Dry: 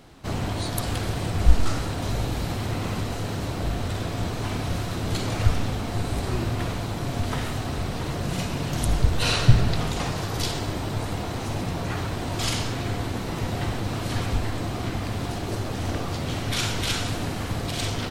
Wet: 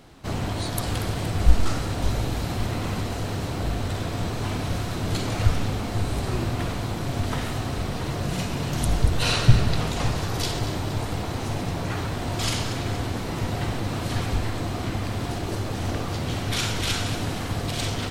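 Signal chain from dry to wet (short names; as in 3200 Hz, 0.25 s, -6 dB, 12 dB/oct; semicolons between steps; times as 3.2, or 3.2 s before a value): split-band echo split 1000 Hz, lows 0.559 s, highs 0.235 s, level -12.5 dB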